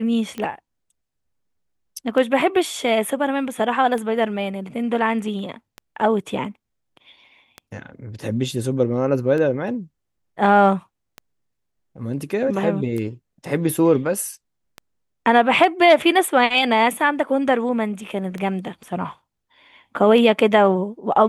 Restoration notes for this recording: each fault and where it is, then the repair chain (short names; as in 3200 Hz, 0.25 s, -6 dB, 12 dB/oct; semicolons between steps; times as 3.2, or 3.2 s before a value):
tick 33 1/3 rpm -17 dBFS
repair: de-click